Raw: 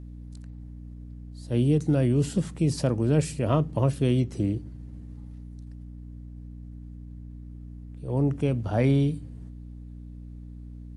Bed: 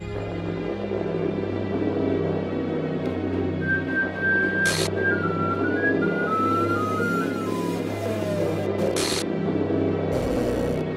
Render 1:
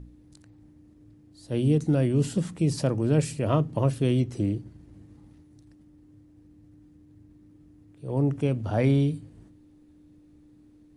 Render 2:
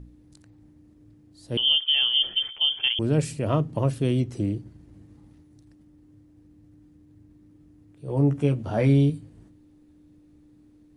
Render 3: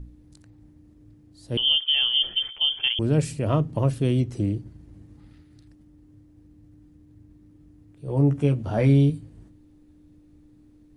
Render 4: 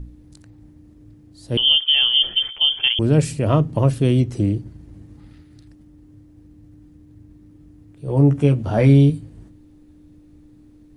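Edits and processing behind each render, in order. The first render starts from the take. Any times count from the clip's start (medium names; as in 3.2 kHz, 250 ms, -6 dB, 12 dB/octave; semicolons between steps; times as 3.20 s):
de-hum 60 Hz, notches 4
1.57–2.99 s: frequency inversion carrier 3.3 kHz; 8.06–9.10 s: doubling 14 ms -5.5 dB
5.19–5.67 s: time-frequency box 1.2–5.2 kHz +8 dB; bass shelf 69 Hz +9 dB
trim +5.5 dB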